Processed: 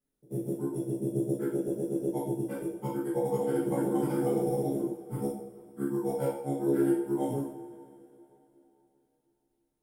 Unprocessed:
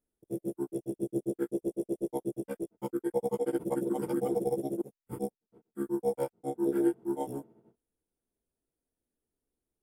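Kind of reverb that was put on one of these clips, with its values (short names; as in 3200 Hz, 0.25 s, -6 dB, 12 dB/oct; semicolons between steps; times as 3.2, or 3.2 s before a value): two-slope reverb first 0.58 s, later 3.6 s, from -21 dB, DRR -8.5 dB; gain -5.5 dB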